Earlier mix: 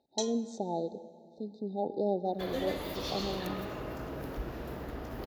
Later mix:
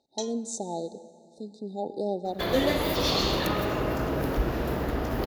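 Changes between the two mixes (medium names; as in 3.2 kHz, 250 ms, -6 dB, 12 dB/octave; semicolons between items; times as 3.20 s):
speech: remove distance through air 230 m; first sound: send -7.0 dB; second sound +11.5 dB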